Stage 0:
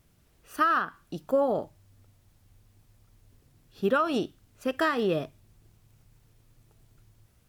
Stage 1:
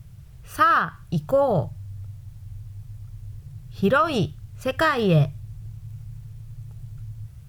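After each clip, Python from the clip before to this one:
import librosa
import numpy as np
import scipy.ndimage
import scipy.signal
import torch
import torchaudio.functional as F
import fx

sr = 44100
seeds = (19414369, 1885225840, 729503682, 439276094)

y = fx.low_shelf_res(x, sr, hz=180.0, db=12.0, q=3.0)
y = F.gain(torch.from_numpy(y), 6.5).numpy()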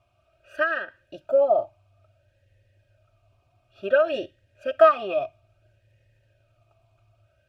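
y = x + 0.98 * np.pad(x, (int(3.2 * sr / 1000.0), 0))[:len(x)]
y = fx.vowel_sweep(y, sr, vowels='a-e', hz=0.58)
y = F.gain(torch.from_numpy(y), 5.5).numpy()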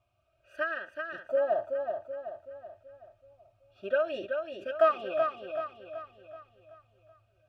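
y = fx.echo_feedback(x, sr, ms=379, feedback_pct=47, wet_db=-5.5)
y = F.gain(torch.from_numpy(y), -8.0).numpy()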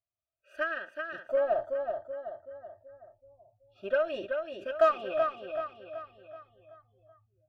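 y = fx.cheby_harmonics(x, sr, harmonics=(8,), levels_db=(-37,), full_scale_db=-12.5)
y = fx.noise_reduce_blind(y, sr, reduce_db=25)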